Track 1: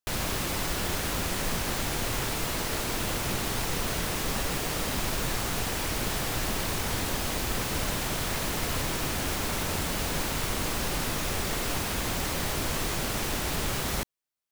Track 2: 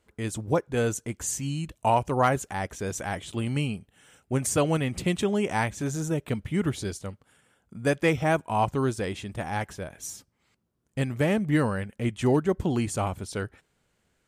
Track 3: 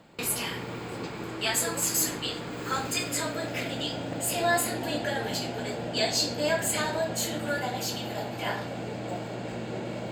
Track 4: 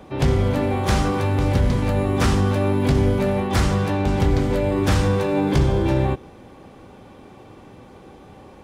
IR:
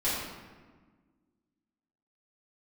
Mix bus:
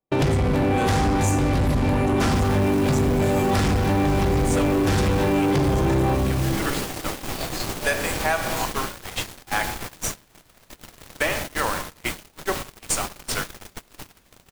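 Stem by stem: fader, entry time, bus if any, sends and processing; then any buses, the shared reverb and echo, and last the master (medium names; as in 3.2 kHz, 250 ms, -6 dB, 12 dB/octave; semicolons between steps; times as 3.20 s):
-3.0 dB, 2.25 s, send -23 dB, peak limiter -27.5 dBFS, peak gain reduction 10.5 dB
+0.5 dB, 0.00 s, send -14.5 dB, high-pass 940 Hz 12 dB/octave; logarithmic tremolo 2.4 Hz, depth 19 dB
-17.5 dB, 1.40 s, no send, none
-4.5 dB, 0.00 s, send -8 dB, hum notches 60/120/180/240/300 Hz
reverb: on, RT60 1.5 s, pre-delay 3 ms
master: gate -36 dBFS, range -38 dB; waveshaping leveller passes 3; compression 10:1, threshold -18 dBFS, peak gain reduction 10 dB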